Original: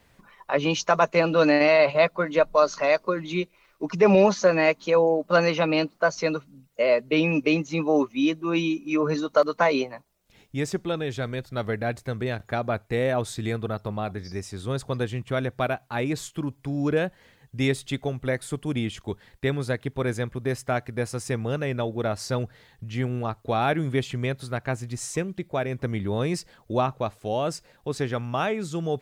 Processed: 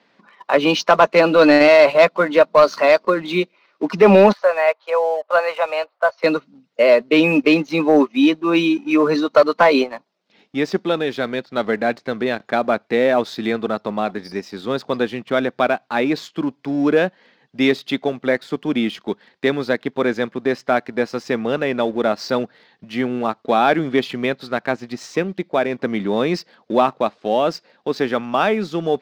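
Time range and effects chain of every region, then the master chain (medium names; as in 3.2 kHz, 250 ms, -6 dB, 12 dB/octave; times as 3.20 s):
4.32–6.24 s: steep high-pass 550 Hz + tape spacing loss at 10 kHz 34 dB
whole clip: Chebyshev band-pass 210–4800 Hz, order 3; waveshaping leveller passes 1; trim +5.5 dB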